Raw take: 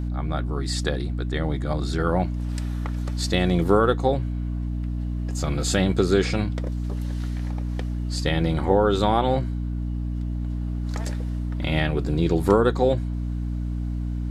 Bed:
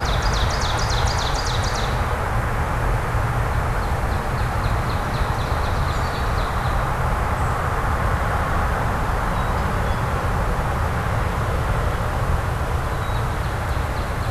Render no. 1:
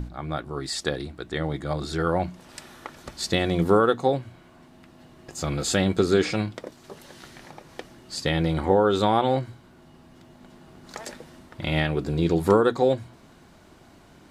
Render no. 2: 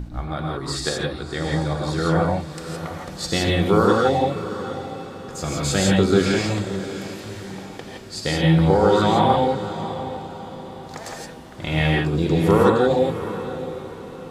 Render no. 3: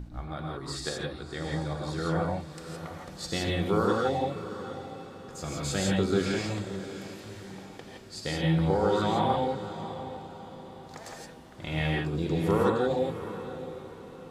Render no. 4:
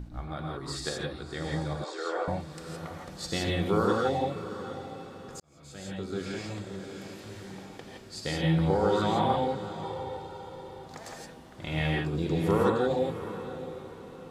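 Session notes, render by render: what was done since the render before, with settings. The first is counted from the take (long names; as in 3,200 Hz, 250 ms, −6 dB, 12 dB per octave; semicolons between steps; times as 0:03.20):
mains-hum notches 60/120/180/240/300 Hz
feedback delay with all-pass diffusion 665 ms, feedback 43%, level −12 dB; reverb whose tail is shaped and stops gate 190 ms rising, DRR −2 dB
level −9 dB
0:01.84–0:02.28: elliptic band-pass filter 390–8,000 Hz; 0:05.40–0:07.41: fade in; 0:09.83–0:10.85: comb filter 2.2 ms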